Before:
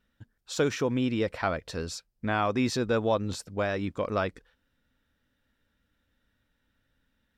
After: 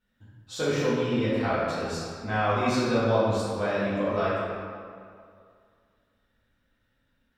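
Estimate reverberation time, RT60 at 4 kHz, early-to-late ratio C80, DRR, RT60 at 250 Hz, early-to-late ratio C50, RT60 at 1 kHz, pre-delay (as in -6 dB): 2.2 s, 1.4 s, -1.0 dB, -11.5 dB, 2.0 s, -4.0 dB, 2.3 s, 3 ms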